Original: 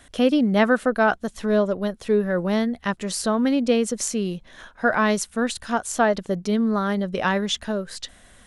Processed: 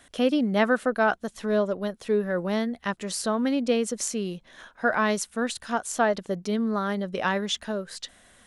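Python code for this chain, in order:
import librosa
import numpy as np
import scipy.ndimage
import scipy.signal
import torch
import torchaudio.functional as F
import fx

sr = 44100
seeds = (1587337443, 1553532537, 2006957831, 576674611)

y = fx.low_shelf(x, sr, hz=110.0, db=-10.0)
y = y * librosa.db_to_amplitude(-3.0)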